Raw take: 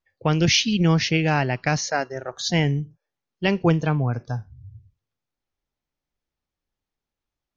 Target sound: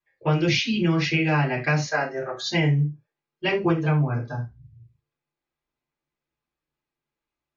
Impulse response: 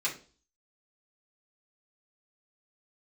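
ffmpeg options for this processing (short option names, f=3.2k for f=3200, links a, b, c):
-filter_complex "[0:a]lowpass=f=2.3k:p=1[a];[1:a]atrim=start_sample=2205,afade=t=out:st=0.15:d=0.01,atrim=end_sample=7056[b];[a][b]afir=irnorm=-1:irlink=0,acompressor=threshold=-17dB:ratio=2.5,volume=-2dB"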